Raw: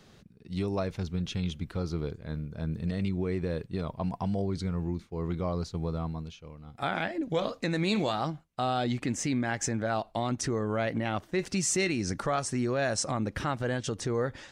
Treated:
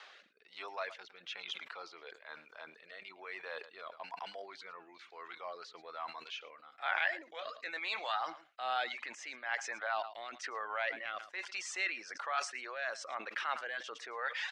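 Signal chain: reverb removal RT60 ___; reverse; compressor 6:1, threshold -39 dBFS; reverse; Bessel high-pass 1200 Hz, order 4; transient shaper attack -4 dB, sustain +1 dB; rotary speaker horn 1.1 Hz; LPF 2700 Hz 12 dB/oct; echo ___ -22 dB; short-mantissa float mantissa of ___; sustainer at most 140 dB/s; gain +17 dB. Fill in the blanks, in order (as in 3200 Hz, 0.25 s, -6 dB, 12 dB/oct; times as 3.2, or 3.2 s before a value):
0.53 s, 0.11 s, 8-bit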